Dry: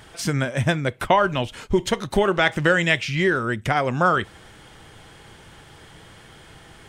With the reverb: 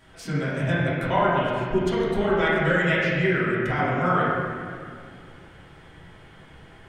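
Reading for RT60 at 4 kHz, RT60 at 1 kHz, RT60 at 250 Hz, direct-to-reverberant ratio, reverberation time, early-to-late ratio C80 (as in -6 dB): 1.7 s, 2.0 s, 2.9 s, -11.0 dB, 2.2 s, -1.0 dB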